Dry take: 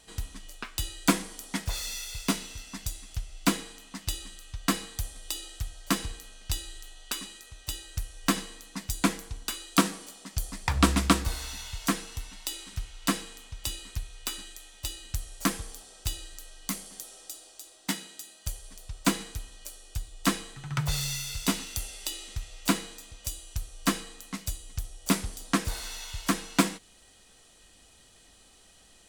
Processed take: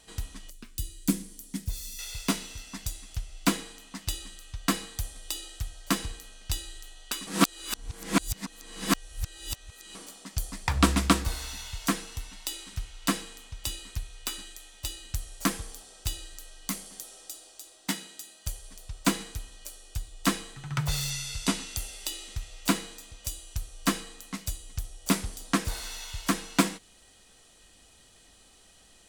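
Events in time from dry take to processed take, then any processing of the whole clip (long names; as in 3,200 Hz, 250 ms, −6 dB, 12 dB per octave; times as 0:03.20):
0:00.50–0:01.99: drawn EQ curve 240 Hz 0 dB, 790 Hz −19 dB, 1,300 Hz −18 dB, 15,000 Hz +1 dB
0:07.27–0:09.95: reverse
0:21.10–0:21.77: low-pass filter 11,000 Hz 24 dB per octave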